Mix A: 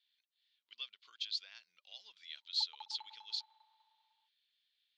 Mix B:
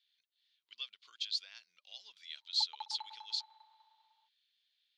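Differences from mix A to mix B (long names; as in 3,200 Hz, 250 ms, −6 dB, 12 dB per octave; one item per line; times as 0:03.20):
speech: remove high-frequency loss of the air 76 metres
background +6.5 dB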